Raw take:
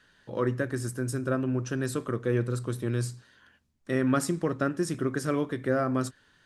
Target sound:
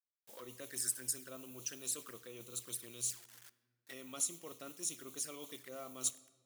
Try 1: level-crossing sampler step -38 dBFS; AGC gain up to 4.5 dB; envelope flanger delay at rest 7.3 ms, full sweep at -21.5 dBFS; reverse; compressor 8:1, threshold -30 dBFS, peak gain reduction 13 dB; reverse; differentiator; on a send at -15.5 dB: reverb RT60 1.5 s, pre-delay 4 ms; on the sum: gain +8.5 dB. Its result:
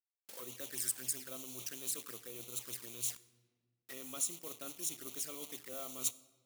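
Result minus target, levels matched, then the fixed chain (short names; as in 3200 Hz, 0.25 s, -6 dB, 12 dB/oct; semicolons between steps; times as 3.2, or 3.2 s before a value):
level-crossing sampler: distortion +12 dB
level-crossing sampler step -49.5 dBFS; AGC gain up to 4.5 dB; envelope flanger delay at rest 7.3 ms, full sweep at -21.5 dBFS; reverse; compressor 8:1, threshold -30 dBFS, peak gain reduction 13 dB; reverse; differentiator; on a send at -15.5 dB: reverb RT60 1.5 s, pre-delay 4 ms; on the sum: gain +8.5 dB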